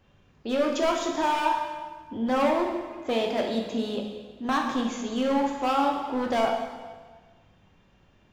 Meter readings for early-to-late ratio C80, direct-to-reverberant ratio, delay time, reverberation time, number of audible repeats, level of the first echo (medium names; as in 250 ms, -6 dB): 6.0 dB, 0.5 dB, no echo, 1.4 s, no echo, no echo